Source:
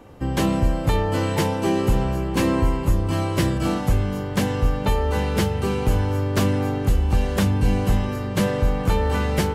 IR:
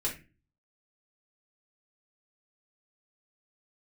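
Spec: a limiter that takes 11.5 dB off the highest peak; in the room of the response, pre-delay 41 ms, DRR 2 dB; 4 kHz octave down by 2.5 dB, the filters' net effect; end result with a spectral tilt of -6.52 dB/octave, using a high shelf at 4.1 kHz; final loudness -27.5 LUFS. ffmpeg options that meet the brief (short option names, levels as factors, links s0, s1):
-filter_complex "[0:a]equalizer=f=4000:t=o:g=-8,highshelf=f=4100:g=7.5,alimiter=limit=0.0944:level=0:latency=1,asplit=2[s0][s1];[1:a]atrim=start_sample=2205,adelay=41[s2];[s1][s2]afir=irnorm=-1:irlink=0,volume=0.473[s3];[s0][s3]amix=inputs=2:normalize=0,volume=0.75"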